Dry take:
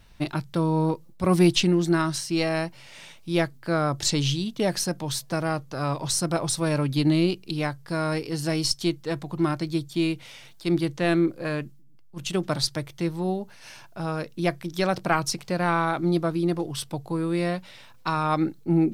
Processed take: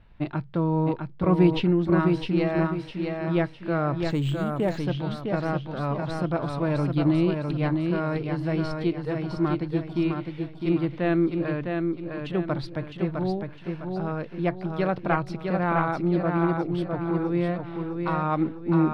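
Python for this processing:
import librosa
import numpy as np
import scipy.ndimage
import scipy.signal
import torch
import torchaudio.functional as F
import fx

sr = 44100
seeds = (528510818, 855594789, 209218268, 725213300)

y = fx.air_absorb(x, sr, metres=450.0)
y = fx.echo_feedback(y, sr, ms=657, feedback_pct=38, wet_db=-4.5)
y = fx.resample_linear(y, sr, factor=4, at=(4.1, 4.78))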